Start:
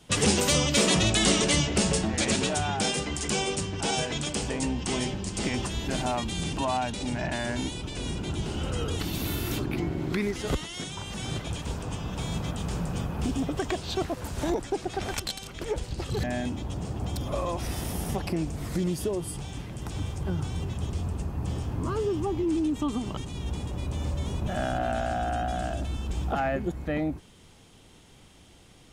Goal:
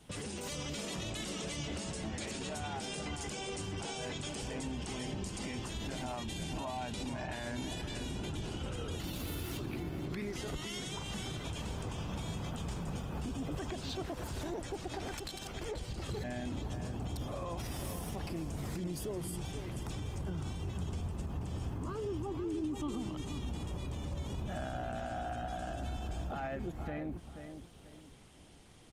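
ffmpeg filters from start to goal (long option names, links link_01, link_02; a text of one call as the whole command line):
ffmpeg -i in.wav -filter_complex "[0:a]acompressor=threshold=-29dB:ratio=3,alimiter=level_in=4.5dB:limit=-24dB:level=0:latency=1:release=52,volume=-4.5dB,asettb=1/sr,asplit=3[link_01][link_02][link_03];[link_01]atrim=end=6.264[link_04];[link_02]atrim=start=6.26:end=6.81,asetpts=PTS-STARTPTS,afade=type=in:duration=0.004:curve=qsin,afade=type=out:start_time=0.546:duration=0.004:curve=qsin,asuperstop=centerf=1300:order=4:qfactor=3.9[link_05];[link_03]atrim=start=6.806[link_06];[link_04][link_05]acrossfade=duration=0.004:curve1=hsin:curve2=qsin[link_07];[link_07][link_06]acrossfade=duration=0.004:curve1=qsin:curve2=hsin,asplit=2[link_08][link_09];[link_09]adelay=483,lowpass=frequency=3800:poles=1,volume=-8dB,asplit=2[link_10][link_11];[link_11]adelay=483,lowpass=frequency=3800:poles=1,volume=0.32,asplit=2[link_12][link_13];[link_13]adelay=483,lowpass=frequency=3800:poles=1,volume=0.32,asplit=2[link_14][link_15];[link_15]adelay=483,lowpass=frequency=3800:poles=1,volume=0.32[link_16];[link_08][link_10][link_12][link_14][link_16]amix=inputs=5:normalize=0,volume=-3dB" -ar 48000 -c:a libopus -b:a 24k out.opus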